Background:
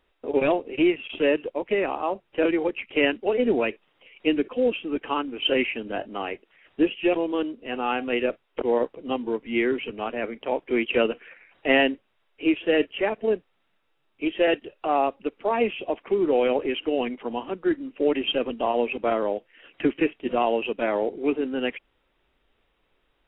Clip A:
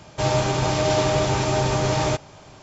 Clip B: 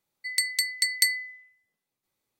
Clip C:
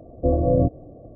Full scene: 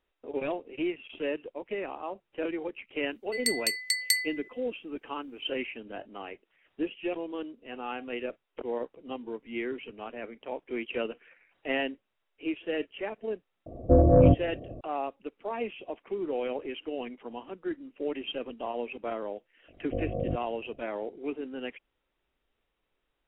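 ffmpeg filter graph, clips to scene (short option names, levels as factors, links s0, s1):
-filter_complex "[3:a]asplit=2[s0][s1];[0:a]volume=0.299[s2];[s0]acontrast=50[s3];[s1]aeval=exprs='val(0)*sin(2*PI*25*n/s)':c=same[s4];[2:a]atrim=end=2.39,asetpts=PTS-STARTPTS,volume=0.708,afade=t=in:d=0.004:c=hsin,afade=t=out:st=2.386:d=0.004:c=hsin,adelay=3080[s5];[s3]atrim=end=1.15,asetpts=PTS-STARTPTS,volume=0.596,afade=t=in:d=0.004:c=hsin,afade=t=out:st=1.146:d=0.004:c=hsin,adelay=13660[s6];[s4]atrim=end=1.15,asetpts=PTS-STARTPTS,volume=0.316,afade=t=in:d=0.004:c=hsin,afade=t=out:st=1.146:d=0.004:c=hsin,adelay=19680[s7];[s2][s5][s6][s7]amix=inputs=4:normalize=0"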